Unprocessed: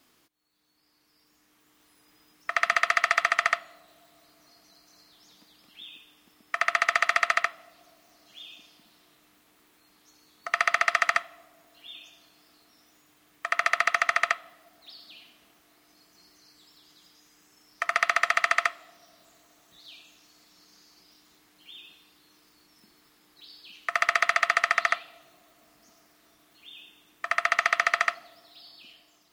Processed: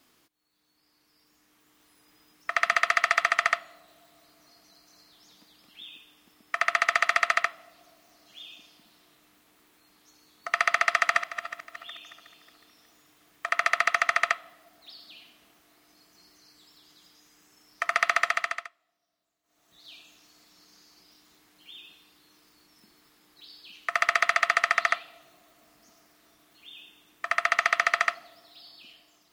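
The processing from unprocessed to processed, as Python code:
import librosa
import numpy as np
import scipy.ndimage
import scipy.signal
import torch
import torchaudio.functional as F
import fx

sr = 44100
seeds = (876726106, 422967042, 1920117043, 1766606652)

y = fx.reverse_delay_fb(x, sr, ms=183, feedback_pct=60, wet_db=-11, at=(10.91, 13.49))
y = fx.edit(y, sr, fx.fade_down_up(start_s=18.2, length_s=1.72, db=-23.5, fade_s=0.49), tone=tone)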